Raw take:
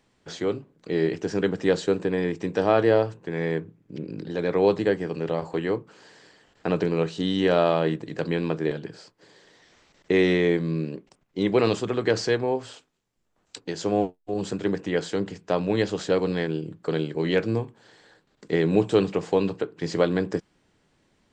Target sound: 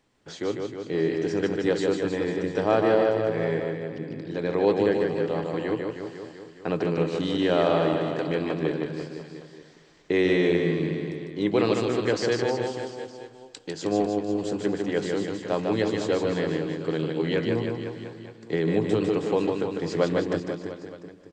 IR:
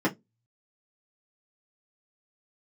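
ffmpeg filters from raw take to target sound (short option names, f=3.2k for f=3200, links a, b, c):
-filter_complex "[0:a]aecho=1:1:295|590|885|1180:0.0891|0.0446|0.0223|0.0111,asplit=2[a][b];[1:a]atrim=start_sample=2205[c];[b][c]afir=irnorm=-1:irlink=0,volume=-31dB[d];[a][d]amix=inputs=2:normalize=0,asettb=1/sr,asplit=3[e][f][g];[e]atrim=end=17.324[h];[f]atrim=start=17.32:end=19.01,asetpts=PTS-STARTPTS,afade=t=in:d=0.004:c=qsin,afade=t=out:st=1.686:d=0.004:c=qsin,acrossover=split=290[i][j];[j]acompressor=threshold=-20dB:ratio=6[k];[i][k]amix=inputs=2:normalize=0[l];[g]atrim=start=19.006[m];[h][l]acrossfade=d=0.004:c1=hsin:c2=qsin[n];[n][m]acrossfade=d=0.004:c1=qsin:c2=hsin,asplit=2[o][p];[p]aecho=0:1:150|315|496.5|696.2|915.8:0.631|0.398|0.251|0.158|0.1[q];[o][q]amix=inputs=2:normalize=0,volume=-3dB"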